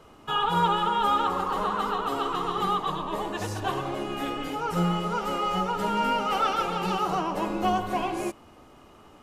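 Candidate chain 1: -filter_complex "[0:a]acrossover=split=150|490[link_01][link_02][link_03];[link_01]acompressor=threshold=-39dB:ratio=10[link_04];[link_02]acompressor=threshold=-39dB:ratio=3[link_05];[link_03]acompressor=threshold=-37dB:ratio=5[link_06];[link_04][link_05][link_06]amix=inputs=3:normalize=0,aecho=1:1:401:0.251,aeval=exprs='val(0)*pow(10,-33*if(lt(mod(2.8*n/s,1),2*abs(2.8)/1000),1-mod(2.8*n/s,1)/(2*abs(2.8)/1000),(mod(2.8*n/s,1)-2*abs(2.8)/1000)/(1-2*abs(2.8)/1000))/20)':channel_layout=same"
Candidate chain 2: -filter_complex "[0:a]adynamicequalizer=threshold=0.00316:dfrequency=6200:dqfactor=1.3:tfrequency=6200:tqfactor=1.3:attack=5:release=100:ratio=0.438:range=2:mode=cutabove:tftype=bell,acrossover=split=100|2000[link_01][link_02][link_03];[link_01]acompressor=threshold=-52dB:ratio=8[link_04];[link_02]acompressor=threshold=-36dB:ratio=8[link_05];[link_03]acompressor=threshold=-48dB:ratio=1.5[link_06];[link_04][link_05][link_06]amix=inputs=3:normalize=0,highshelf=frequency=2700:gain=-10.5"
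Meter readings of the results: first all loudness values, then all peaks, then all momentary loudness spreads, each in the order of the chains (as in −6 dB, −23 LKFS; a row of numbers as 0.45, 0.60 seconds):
−44.0, −38.5 LKFS; −24.5, −26.0 dBFS; 3, 3 LU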